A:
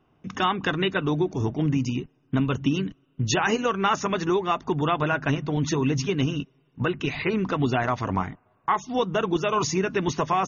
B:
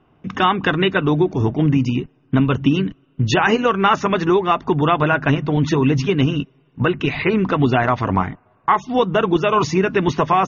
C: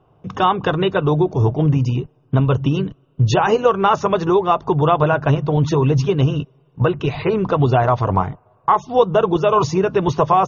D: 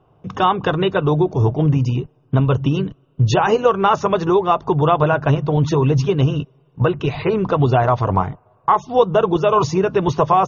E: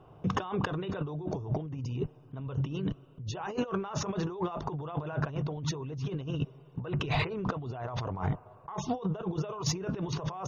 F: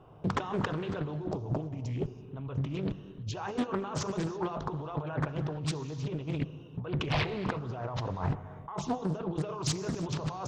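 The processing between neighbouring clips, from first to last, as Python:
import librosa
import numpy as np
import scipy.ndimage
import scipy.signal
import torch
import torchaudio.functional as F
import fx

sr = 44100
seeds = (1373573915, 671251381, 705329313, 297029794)

y1 = scipy.signal.sosfilt(scipy.signal.butter(2, 3700.0, 'lowpass', fs=sr, output='sos'), x)
y1 = F.gain(torch.from_numpy(y1), 7.5).numpy()
y2 = fx.graphic_eq(y1, sr, hz=(125, 250, 500, 1000, 2000), db=(6, -9, 6, 3, -11))
y3 = y2
y4 = fx.over_compress(y3, sr, threshold_db=-27.0, ratio=-1.0)
y4 = 10.0 ** (-9.0 / 20.0) * np.tanh(y4 / 10.0 ** (-9.0 / 20.0))
y4 = F.gain(torch.from_numpy(y4), -7.5).numpy()
y5 = fx.rev_gated(y4, sr, seeds[0], gate_ms=360, shape='flat', drr_db=11.5)
y5 = fx.doppler_dist(y5, sr, depth_ms=0.69)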